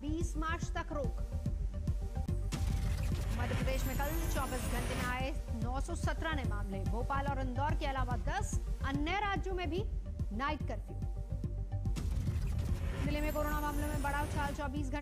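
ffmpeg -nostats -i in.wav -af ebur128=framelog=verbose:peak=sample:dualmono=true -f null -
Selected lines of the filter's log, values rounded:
Integrated loudness:
  I:         -34.0 LUFS
  Threshold: -44.0 LUFS
Loudness range:
  LRA:         1.8 LU
  Threshold: -54.0 LUFS
  LRA low:   -35.0 LUFS
  LRA high:  -33.2 LUFS
Sample peak:
  Peak:      -24.8 dBFS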